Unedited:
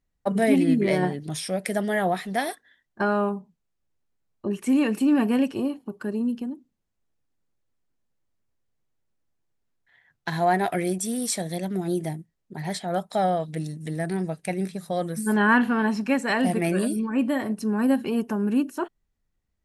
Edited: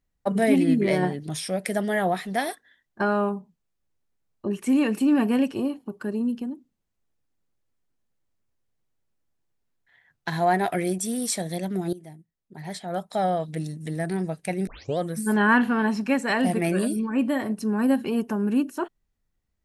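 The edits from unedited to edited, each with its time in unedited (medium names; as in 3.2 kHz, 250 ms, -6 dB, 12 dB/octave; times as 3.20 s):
11.93–13.46 s: fade in, from -18.5 dB
14.67 s: tape start 0.31 s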